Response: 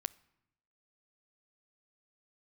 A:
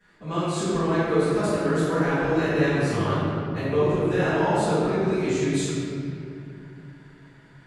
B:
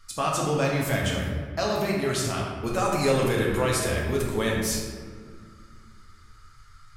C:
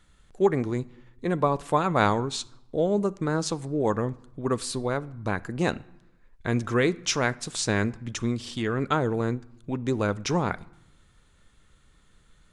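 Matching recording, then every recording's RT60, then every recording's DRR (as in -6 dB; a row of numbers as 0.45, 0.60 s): C; 2.6, 1.9, 0.85 s; -22.0, -3.5, 17.5 dB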